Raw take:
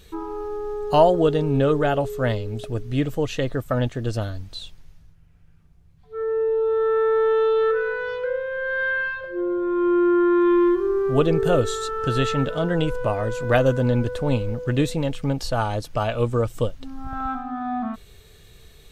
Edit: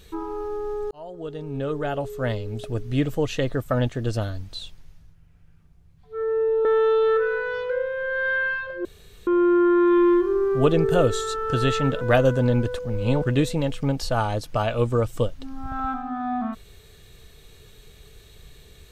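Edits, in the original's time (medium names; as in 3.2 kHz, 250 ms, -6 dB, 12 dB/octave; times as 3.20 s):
0.91–2.88 s: fade in
6.65–7.19 s: delete
9.39–9.81 s: room tone
12.55–13.42 s: delete
14.20–14.65 s: reverse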